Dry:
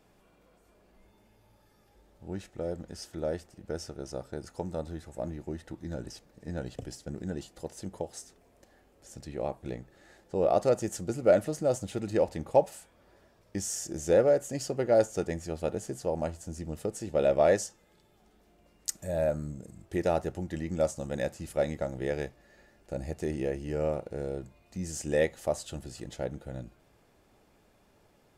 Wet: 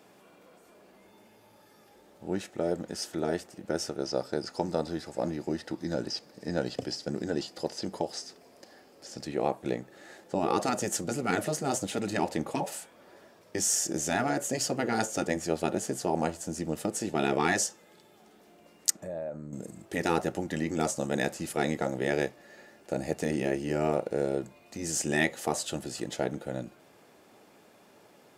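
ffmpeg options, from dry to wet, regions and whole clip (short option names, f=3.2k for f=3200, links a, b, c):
-filter_complex "[0:a]asettb=1/sr,asplit=3[a][b][c];[a]atrim=end=4.014[d];[b]atrim=start=4.01:end=9.24,asetpts=PTS-STARTPTS,afade=t=in:d=0.004:c=qsin,afade=t=out:st=5.226:d=0.004:c=qsin,equalizer=f=4.9k:w=4.3:g=11.5,acrossover=split=5700[e][f];[f]acompressor=threshold=-60dB:ratio=4:attack=1:release=60[g];[e][g]amix=inputs=2:normalize=0[h];[c]atrim=start=9.236[i];[d][h]acrossfade=d=0.004:c1=hsin:c2=qsin[j];[j][i]acrossfade=d=0.004:c1=qsin:c2=hsin,asettb=1/sr,asplit=3[k][l][m];[k]atrim=end=18.904[n];[l]atrim=start=18.9:end=19.53,asetpts=PTS-STARTPTS,afade=t=in:d=0.004:c=qsin,afade=t=out:st=0.626:d=0.004:c=qsin,lowpass=f=1.4k:p=1,acompressor=threshold=-40dB:ratio=12:attack=3.2:release=140:knee=1:detection=peak[o];[m]atrim=start=19.526[p];[n][o]acrossfade=d=0.004:c1=hsin:c2=qsin[q];[q][p]acrossfade=d=0.004:c1=qsin:c2=hsin,afftfilt=real='re*lt(hypot(re,im),0.178)':imag='im*lt(hypot(re,im),0.178)':win_size=1024:overlap=0.75,highpass=200,volume=8dB"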